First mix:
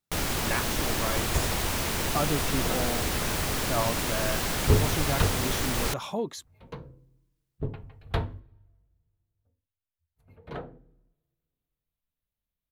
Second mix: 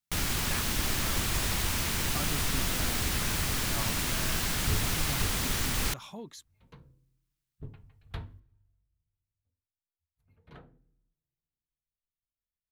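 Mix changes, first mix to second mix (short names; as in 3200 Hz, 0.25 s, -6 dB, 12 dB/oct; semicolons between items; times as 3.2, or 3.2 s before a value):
speech -7.0 dB; second sound -9.5 dB; master: add bell 550 Hz -8.5 dB 1.8 oct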